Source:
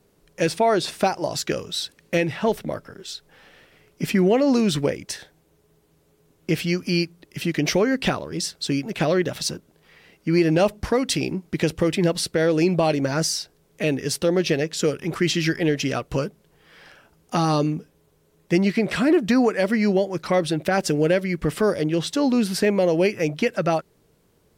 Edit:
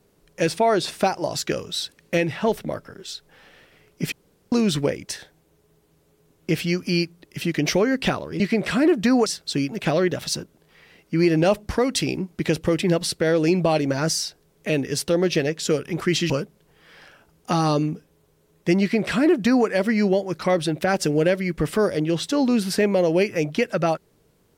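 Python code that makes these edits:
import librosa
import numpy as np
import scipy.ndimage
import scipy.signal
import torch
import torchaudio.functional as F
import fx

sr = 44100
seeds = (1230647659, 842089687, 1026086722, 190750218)

y = fx.edit(x, sr, fx.room_tone_fill(start_s=4.12, length_s=0.4),
    fx.cut(start_s=15.44, length_s=0.7),
    fx.duplicate(start_s=18.65, length_s=0.86, to_s=8.4), tone=tone)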